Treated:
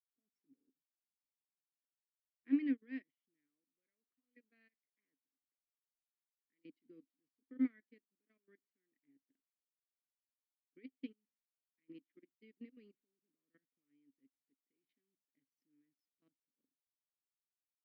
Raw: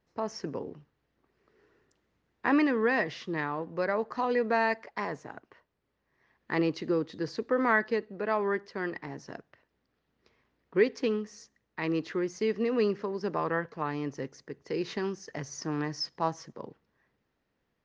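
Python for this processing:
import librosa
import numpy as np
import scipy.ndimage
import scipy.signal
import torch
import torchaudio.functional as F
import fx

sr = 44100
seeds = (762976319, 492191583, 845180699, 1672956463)

y = fx.low_shelf(x, sr, hz=390.0, db=-7.5, at=(3.46, 6.64), fade=0.02)
y = fx.level_steps(y, sr, step_db=14)
y = fx.vowel_filter(y, sr, vowel='i')
y = fx.upward_expand(y, sr, threshold_db=-54.0, expansion=2.5)
y = y * librosa.db_to_amplitude(3.5)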